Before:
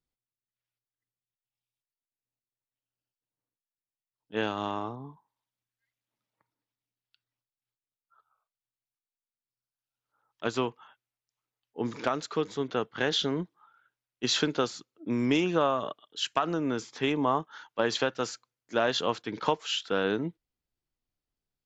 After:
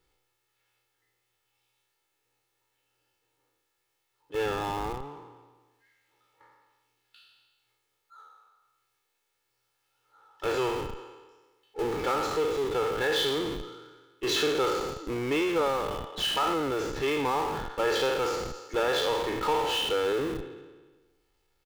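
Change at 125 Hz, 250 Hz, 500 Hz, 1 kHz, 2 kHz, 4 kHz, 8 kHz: −2.0 dB, −2.5 dB, +3.0 dB, +2.5 dB, +1.5 dB, +1.5 dB, can't be measured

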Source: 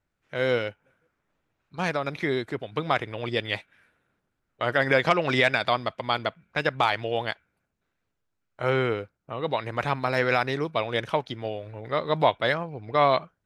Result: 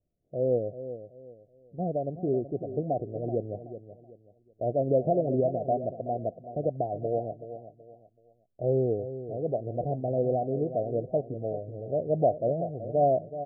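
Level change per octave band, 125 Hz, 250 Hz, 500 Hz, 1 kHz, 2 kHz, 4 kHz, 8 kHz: 0.0 dB, −0.5 dB, 0.0 dB, −6.5 dB, below −40 dB, below −40 dB, can't be measured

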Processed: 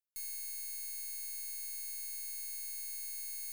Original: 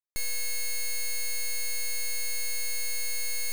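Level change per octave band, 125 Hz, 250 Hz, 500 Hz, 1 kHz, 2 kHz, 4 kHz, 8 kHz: can't be measured, below −25 dB, below −25 dB, below −20 dB, −20.0 dB, −14.5 dB, −9.5 dB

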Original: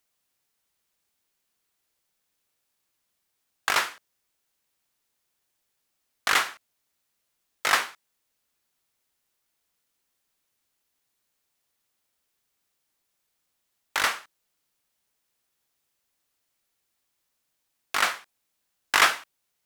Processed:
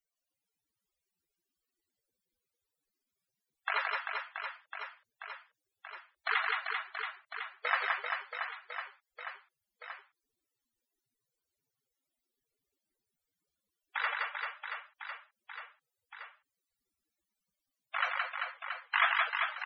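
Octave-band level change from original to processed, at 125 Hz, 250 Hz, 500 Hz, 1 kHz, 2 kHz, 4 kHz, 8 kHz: can't be measured, below −25 dB, −7.0 dB, −5.0 dB, −4.5 dB, −10.5 dB, below −40 dB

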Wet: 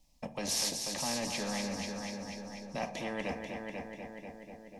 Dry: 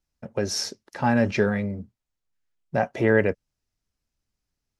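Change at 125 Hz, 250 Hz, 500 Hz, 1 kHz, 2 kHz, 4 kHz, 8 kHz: −16.5 dB, −12.0 dB, −14.5 dB, −10.0 dB, −12.0 dB, −1.0 dB, can't be measured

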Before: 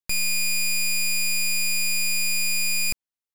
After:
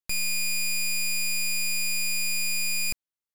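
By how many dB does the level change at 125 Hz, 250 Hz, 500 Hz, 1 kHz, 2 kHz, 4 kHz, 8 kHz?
can't be measured, −3.5 dB, −3.5 dB, −3.5 dB, −3.5 dB, −3.5 dB, −3.5 dB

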